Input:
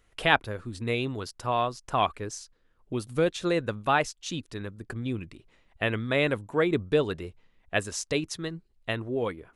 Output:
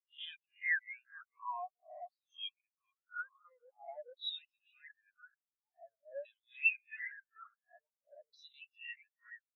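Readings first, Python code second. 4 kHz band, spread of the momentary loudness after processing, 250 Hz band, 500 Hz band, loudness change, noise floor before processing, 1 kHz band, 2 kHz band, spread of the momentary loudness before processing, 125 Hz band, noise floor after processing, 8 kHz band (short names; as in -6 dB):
-11.5 dB, 25 LU, under -40 dB, -25.0 dB, -11.0 dB, -66 dBFS, -18.5 dB, -8.0 dB, 12 LU, under -40 dB, under -85 dBFS, under -40 dB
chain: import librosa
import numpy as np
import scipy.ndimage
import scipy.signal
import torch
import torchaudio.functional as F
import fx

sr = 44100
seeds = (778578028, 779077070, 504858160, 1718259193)

y = fx.spec_swells(x, sr, rise_s=0.45)
y = fx.echo_feedback(y, sr, ms=432, feedback_pct=42, wet_db=-3.0)
y = fx.filter_lfo_bandpass(y, sr, shape='saw_down', hz=0.48, low_hz=510.0, high_hz=4200.0, q=3.8)
y = fx.low_shelf(y, sr, hz=220.0, db=7.0)
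y = 10.0 ** (-31.5 / 20.0) * np.tanh(y / 10.0 ** (-31.5 / 20.0))
y = fx.tone_stack(y, sr, knobs='10-0-10')
y = fx.leveller(y, sr, passes=2)
y = fx.spectral_expand(y, sr, expansion=4.0)
y = F.gain(torch.from_numpy(y), 8.5).numpy()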